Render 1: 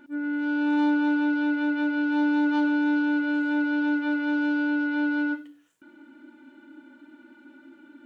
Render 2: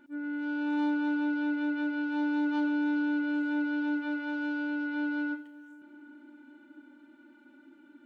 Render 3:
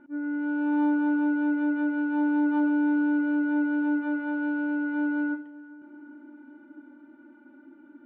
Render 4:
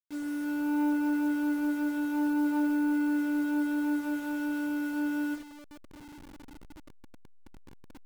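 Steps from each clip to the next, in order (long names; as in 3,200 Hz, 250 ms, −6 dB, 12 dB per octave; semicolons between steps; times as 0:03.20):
feedback echo with a low-pass in the loop 391 ms, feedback 78%, low-pass 2,200 Hz, level −21 dB; level −6.5 dB
low-pass filter 1,400 Hz 12 dB per octave; level +5 dB
hold until the input has moved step −38.5 dBFS; level −3.5 dB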